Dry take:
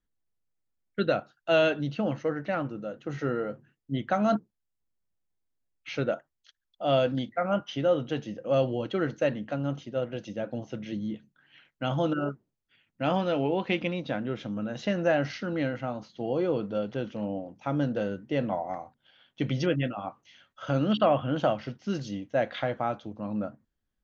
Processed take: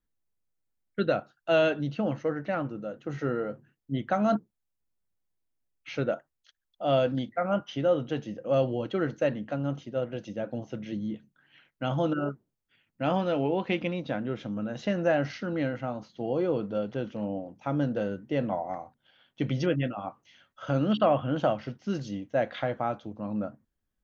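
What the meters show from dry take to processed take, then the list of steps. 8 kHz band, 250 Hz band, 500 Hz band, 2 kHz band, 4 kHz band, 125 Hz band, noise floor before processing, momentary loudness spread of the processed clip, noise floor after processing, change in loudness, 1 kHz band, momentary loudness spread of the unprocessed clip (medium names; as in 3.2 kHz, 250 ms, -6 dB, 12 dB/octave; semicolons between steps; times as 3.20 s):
no reading, 0.0 dB, 0.0 dB, -1.5 dB, -3.0 dB, 0.0 dB, -82 dBFS, 10 LU, -82 dBFS, -0.5 dB, -0.5 dB, 10 LU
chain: peaking EQ 4 kHz -3 dB 2.2 oct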